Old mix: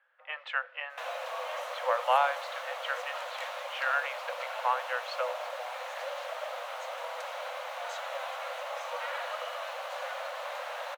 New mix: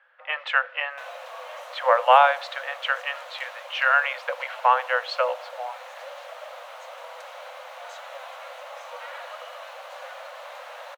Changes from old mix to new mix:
speech +10.0 dB
reverb: off

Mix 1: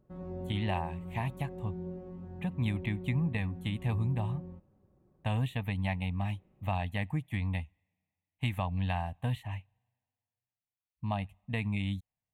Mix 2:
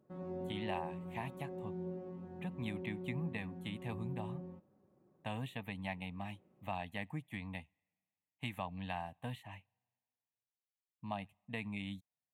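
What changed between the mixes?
speech −5.5 dB
master: add high-pass filter 180 Hz 12 dB per octave

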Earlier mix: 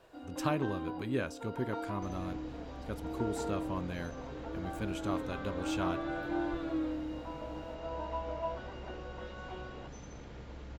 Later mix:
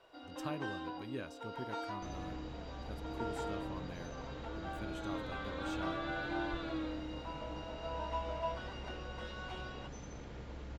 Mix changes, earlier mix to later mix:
speech −9.5 dB
first sound: add spectral tilt +3.5 dB per octave

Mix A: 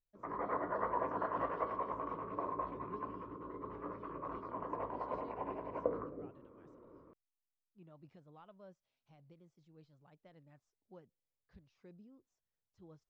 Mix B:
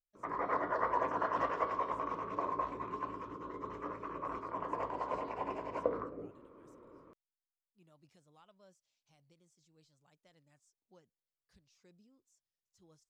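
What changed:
speech −8.5 dB
master: remove head-to-tape spacing loss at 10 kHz 37 dB

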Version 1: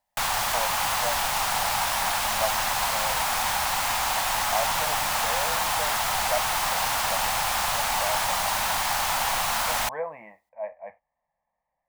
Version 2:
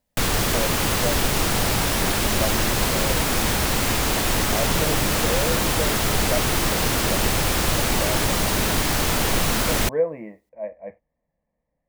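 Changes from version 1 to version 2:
background +3.5 dB
master: add low shelf with overshoot 560 Hz +13 dB, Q 3

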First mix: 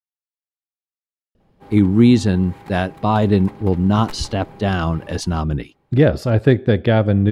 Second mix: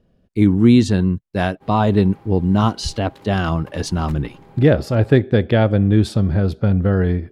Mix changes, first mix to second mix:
speech: entry −1.35 s
background −5.0 dB

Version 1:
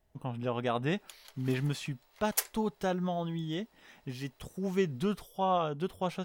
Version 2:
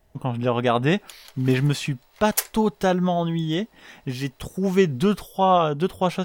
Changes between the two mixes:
speech +11.0 dB
background +7.0 dB

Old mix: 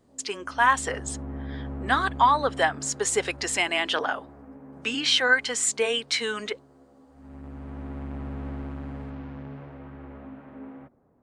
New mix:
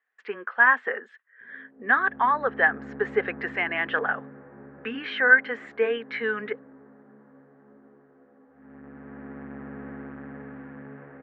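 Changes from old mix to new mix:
background: entry +1.40 s
master: add loudspeaker in its box 210–2,100 Hz, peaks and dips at 220 Hz +5 dB, 310 Hz −7 dB, 440 Hz +4 dB, 630 Hz −5 dB, 950 Hz −5 dB, 1,700 Hz +9 dB

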